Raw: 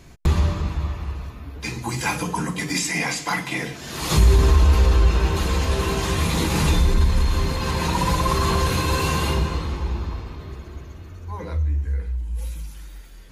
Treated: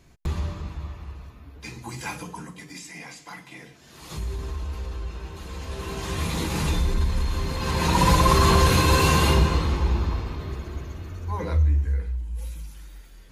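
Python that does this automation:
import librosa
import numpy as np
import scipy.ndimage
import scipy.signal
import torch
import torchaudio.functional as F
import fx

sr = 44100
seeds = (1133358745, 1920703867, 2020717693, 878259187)

y = fx.gain(x, sr, db=fx.line((2.12, -9.0), (2.7, -16.5), (5.37, -16.5), (6.21, -5.5), (7.44, -5.5), (8.04, 3.0), (11.64, 3.0), (12.3, -4.0)))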